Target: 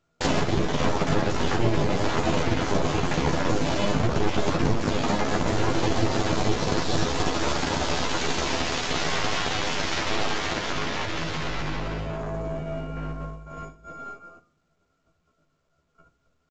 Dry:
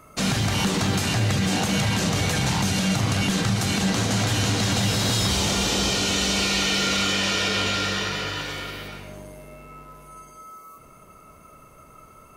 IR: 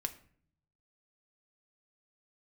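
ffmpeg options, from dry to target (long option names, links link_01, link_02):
-filter_complex "[0:a]bandreject=frequency=60:width_type=h:width=6,bandreject=frequency=120:width_type=h:width=6,bandreject=frequency=180:width_type=h:width=6,bandreject=frequency=240:width_type=h:width=6,bandreject=frequency=300:width_type=h:width=6,agate=range=-37dB:threshold=-43dB:ratio=16:detection=peak,tiltshelf=frequency=1400:gain=8,acompressor=threshold=-28dB:ratio=3,atempo=0.7,aeval=exprs='0.141*(cos(1*acos(clip(val(0)/0.141,-1,1)))-cos(1*PI/2))+0.0501*(cos(3*acos(clip(val(0)/0.141,-1,1)))-cos(3*PI/2))+0.00562*(cos(6*acos(clip(val(0)/0.141,-1,1)))-cos(6*PI/2))+0.0126*(cos(7*acos(clip(val(0)/0.141,-1,1)))-cos(7*PI/2))':channel_layout=same,asetrate=47187,aresample=44100,asplit=2[link_01][link_02];[1:a]atrim=start_sample=2205,adelay=12[link_03];[link_02][link_03]afir=irnorm=-1:irlink=0,volume=-1.5dB[link_04];[link_01][link_04]amix=inputs=2:normalize=0,volume=7.5dB" -ar 16000 -c:a pcm_mulaw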